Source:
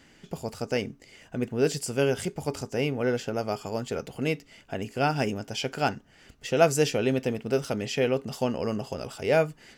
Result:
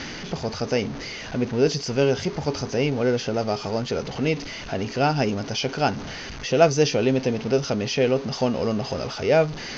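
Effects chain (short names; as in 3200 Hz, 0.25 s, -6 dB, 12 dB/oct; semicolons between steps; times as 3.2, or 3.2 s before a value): zero-crossing step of -34 dBFS; reverse; upward compressor, threshold -35 dBFS; reverse; rippled Chebyshev low-pass 6400 Hz, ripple 3 dB; dynamic EQ 1700 Hz, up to -6 dB, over -44 dBFS, Q 1.2; gain +6.5 dB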